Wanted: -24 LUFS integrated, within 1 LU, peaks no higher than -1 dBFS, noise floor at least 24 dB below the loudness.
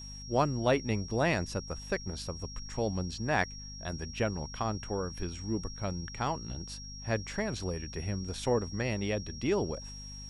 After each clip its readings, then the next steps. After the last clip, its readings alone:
hum 50 Hz; highest harmonic 250 Hz; hum level -45 dBFS; steady tone 5.6 kHz; tone level -45 dBFS; loudness -33.5 LUFS; peak level -14.0 dBFS; loudness target -24.0 LUFS
-> hum notches 50/100/150/200/250 Hz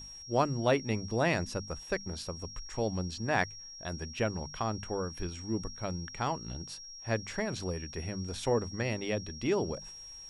hum not found; steady tone 5.6 kHz; tone level -45 dBFS
-> band-stop 5.6 kHz, Q 30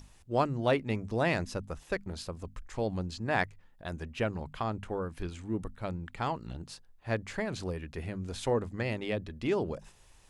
steady tone not found; loudness -34.0 LUFS; peak level -13.5 dBFS; loudness target -24.0 LUFS
-> trim +10 dB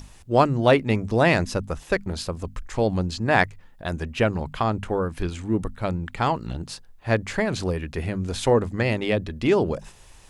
loudness -24.0 LUFS; peak level -3.5 dBFS; noise floor -49 dBFS

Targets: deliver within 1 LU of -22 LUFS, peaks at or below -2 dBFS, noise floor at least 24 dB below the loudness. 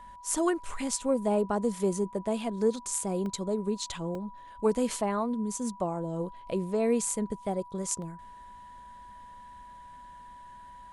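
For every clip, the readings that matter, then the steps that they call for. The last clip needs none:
dropouts 3; longest dropout 1.3 ms; steady tone 980 Hz; tone level -46 dBFS; loudness -30.5 LUFS; peak level -12.5 dBFS; loudness target -22.0 LUFS
-> interpolate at 3.26/4.15/8.02 s, 1.3 ms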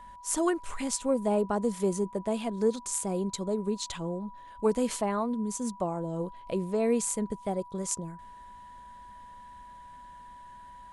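dropouts 0; steady tone 980 Hz; tone level -46 dBFS
-> band-stop 980 Hz, Q 30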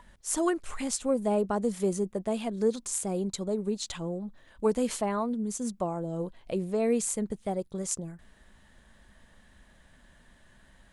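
steady tone not found; loudness -30.5 LUFS; peak level -12.5 dBFS; loudness target -22.0 LUFS
-> trim +8.5 dB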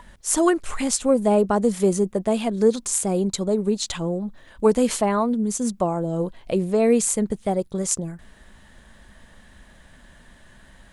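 loudness -22.0 LUFS; peak level -4.0 dBFS; noise floor -51 dBFS

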